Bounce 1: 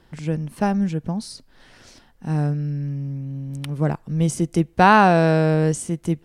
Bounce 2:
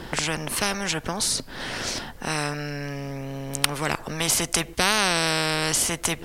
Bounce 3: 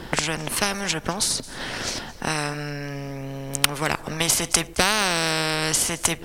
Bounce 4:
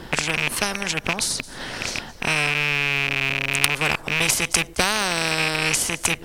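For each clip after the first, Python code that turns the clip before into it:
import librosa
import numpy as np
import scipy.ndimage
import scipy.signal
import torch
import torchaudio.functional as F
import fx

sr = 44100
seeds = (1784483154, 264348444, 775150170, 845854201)

y1 = fx.spectral_comp(x, sr, ratio=4.0)
y2 = np.clip(10.0 ** (8.0 / 20.0) * y1, -1.0, 1.0) / 10.0 ** (8.0 / 20.0)
y2 = fx.transient(y2, sr, attack_db=5, sustain_db=0)
y2 = y2 + 10.0 ** (-19.5 / 20.0) * np.pad(y2, (int(218 * sr / 1000.0), 0))[:len(y2)]
y3 = fx.rattle_buzz(y2, sr, strikes_db=-32.0, level_db=-8.0)
y3 = y3 * 10.0 ** (-1.0 / 20.0)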